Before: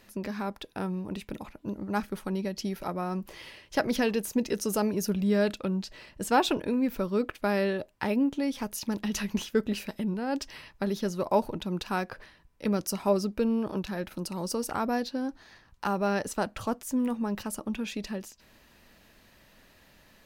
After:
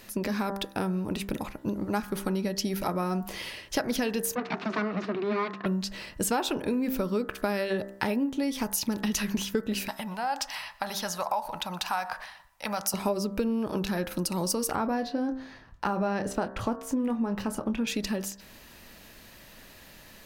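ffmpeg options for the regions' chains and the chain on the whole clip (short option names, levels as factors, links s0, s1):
-filter_complex "[0:a]asettb=1/sr,asplit=3[s0][s1][s2];[s0]atrim=end=4.354[s3];[s1]atrim=start=4.35:end=5.66,asetpts=PTS-STARTPTS,afade=t=in:d=0.004:c=qsin,afade=t=out:st=1.306:d=0.004:c=qsin,aeval=exprs='abs(val(0))':c=same,highpass=f=170:w=0.5412,highpass=f=170:w=1.3066,equalizer=f=190:t=q:w=4:g=4,equalizer=f=550:t=q:w=4:g=-10,equalizer=f=810:t=q:w=4:g=-7,equalizer=f=1200:t=q:w=4:g=3,equalizer=f=3200:t=q:w=4:g=-8,lowpass=f=3500:w=0.5412,lowpass=f=3500:w=1.3066[s4];[s2]atrim=start=5.656[s5];[s3][s4]acrossfade=d=0.004:c1=hsin:c2=qsin[s6];[s6][s5]acrossfade=d=0.004:c1=qsin:c2=hsin,asettb=1/sr,asplit=3[s7][s8][s9];[s7]atrim=end=9.884[s10];[s8]atrim=start=9.88:end=12.94,asetpts=PTS-STARTPTS,afade=t=in:d=0.004:c=qsin,afade=t=out:st=3.056:d=0.004:c=qsin,lowshelf=f=550:t=q:w=3:g=-12,acompressor=threshold=0.0141:ratio=1.5:attack=3.2:release=140:knee=1:detection=peak,aecho=1:1:121:0.0841,atrim=end_sample=134946[s11];[s9]atrim=start=12.936[s12];[s10][s11]acrossfade=d=0.004:c1=hsin:c2=qsin[s13];[s13][s12]acrossfade=d=0.004:c1=qsin:c2=hsin,asettb=1/sr,asplit=3[s14][s15][s16];[s14]atrim=end=14.754[s17];[s15]atrim=start=14.75:end=17.87,asetpts=PTS-STARTPTS,afade=t=in:d=0.004:c=qsin,afade=t=out:st=3.116:d=0.004:c=qsin,lowpass=f=1800:p=1,asplit=2[s18][s19];[s19]adelay=26,volume=0.299[s20];[s18][s20]amix=inputs=2:normalize=0,atrim=end_sample=137592[s21];[s16]atrim=start=17.866[s22];[s17][s21]acrossfade=d=0.004:c1=hsin:c2=qsin[s23];[s23][s22]acrossfade=d=0.004:c1=qsin:c2=hsin,highshelf=f=5800:g=6,bandreject=f=65.62:t=h:w=4,bandreject=f=131.24:t=h:w=4,bandreject=f=196.86:t=h:w=4,bandreject=f=262.48:t=h:w=4,bandreject=f=328.1:t=h:w=4,bandreject=f=393.72:t=h:w=4,bandreject=f=459.34:t=h:w=4,bandreject=f=524.96:t=h:w=4,bandreject=f=590.58:t=h:w=4,bandreject=f=656.2:t=h:w=4,bandreject=f=721.82:t=h:w=4,bandreject=f=787.44:t=h:w=4,bandreject=f=853.06:t=h:w=4,bandreject=f=918.68:t=h:w=4,bandreject=f=984.3:t=h:w=4,bandreject=f=1049.92:t=h:w=4,bandreject=f=1115.54:t=h:w=4,bandreject=f=1181.16:t=h:w=4,bandreject=f=1246.78:t=h:w=4,bandreject=f=1312.4:t=h:w=4,bandreject=f=1378.02:t=h:w=4,bandreject=f=1443.64:t=h:w=4,bandreject=f=1509.26:t=h:w=4,bandreject=f=1574.88:t=h:w=4,bandreject=f=1640.5:t=h:w=4,bandreject=f=1706.12:t=h:w=4,bandreject=f=1771.74:t=h:w=4,bandreject=f=1837.36:t=h:w=4,bandreject=f=1902.98:t=h:w=4,bandreject=f=1968.6:t=h:w=4,acompressor=threshold=0.0251:ratio=6,volume=2.24"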